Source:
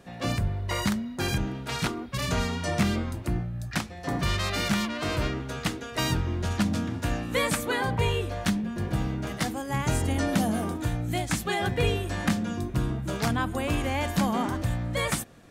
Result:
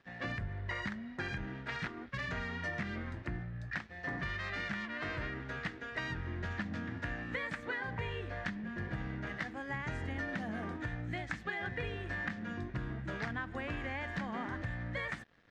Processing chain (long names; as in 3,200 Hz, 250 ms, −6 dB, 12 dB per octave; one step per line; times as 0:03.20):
parametric band 1,800 Hz +14.5 dB 0.58 octaves
downward compressor, threshold −26 dBFS, peak gain reduction 10 dB
dead-zone distortion −50 dBFS
high-frequency loss of the air 160 metres
level −7.5 dB